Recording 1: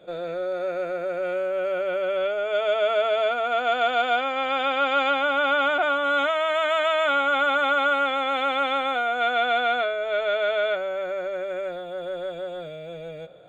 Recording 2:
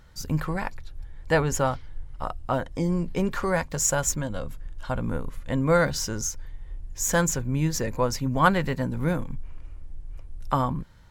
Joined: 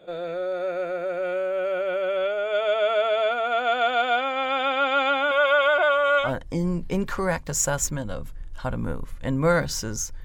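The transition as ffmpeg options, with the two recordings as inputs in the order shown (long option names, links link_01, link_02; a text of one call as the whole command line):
ffmpeg -i cue0.wav -i cue1.wav -filter_complex "[0:a]asettb=1/sr,asplit=3[link_01][link_02][link_03];[link_01]atrim=end=5.314[link_04];[link_02]atrim=start=5.31:end=6.33,asetpts=PTS-STARTPTS,afade=type=in:duration=0.004:curve=qsin,afade=type=out:start_time=1.016:duration=0.004:curve=qsin,aecho=1:1:1.9:0.89,atrim=end_sample=44982[link_05];[link_03]atrim=start=6.326[link_06];[link_04][link_05]acrossfade=duration=0.004:curve1=hsin:curve2=qsin[link_07];[link_07][link_06]acrossfade=duration=0.004:curve1=qsin:curve2=hsin,apad=whole_dur=10.24,atrim=end=10.24,atrim=end=6.33,asetpts=PTS-STARTPTS[link_08];[1:a]atrim=start=2.42:end=6.49,asetpts=PTS-STARTPTS[link_09];[link_08][link_09]acrossfade=duration=0.16:curve1=tri:curve2=tri" out.wav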